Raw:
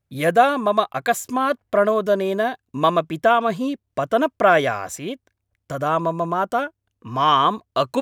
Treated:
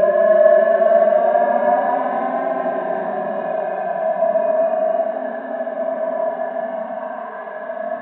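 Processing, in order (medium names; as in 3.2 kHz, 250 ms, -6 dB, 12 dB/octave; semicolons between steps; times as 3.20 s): cabinet simulation 170–2300 Hz, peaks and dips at 170 Hz -8 dB, 270 Hz +6 dB, 450 Hz -9 dB, 640 Hz +10 dB, 980 Hz +10 dB; gated-style reverb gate 350 ms flat, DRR 1.5 dB; Paulstretch 23×, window 0.05 s, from 2.39 s; trim -5.5 dB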